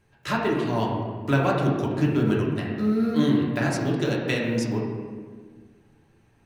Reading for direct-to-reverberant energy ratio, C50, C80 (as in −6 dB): −4.0 dB, 1.5 dB, 3.0 dB